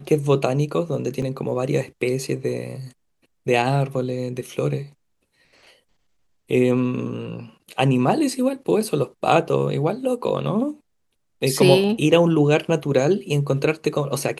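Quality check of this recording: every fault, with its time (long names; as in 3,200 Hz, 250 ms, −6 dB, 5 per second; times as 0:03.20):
0:01.22: drop-out 3.6 ms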